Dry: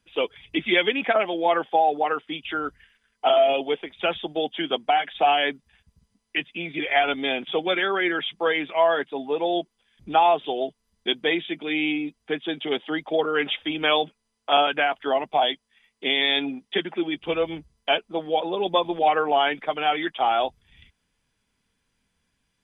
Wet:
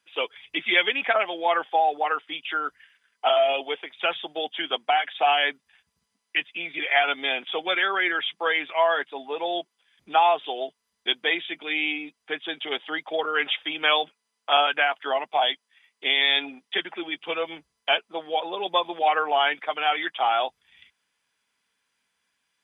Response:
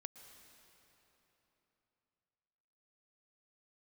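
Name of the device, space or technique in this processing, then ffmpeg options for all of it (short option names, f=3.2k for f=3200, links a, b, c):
filter by subtraction: -filter_complex "[0:a]asplit=2[a][b];[b]lowpass=1.3k,volume=-1[c];[a][c]amix=inputs=2:normalize=0"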